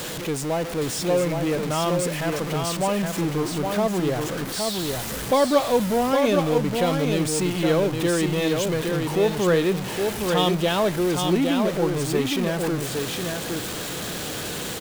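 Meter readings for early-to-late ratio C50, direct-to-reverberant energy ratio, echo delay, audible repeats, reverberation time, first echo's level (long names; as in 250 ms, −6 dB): no reverb audible, no reverb audible, 815 ms, 1, no reverb audible, −4.5 dB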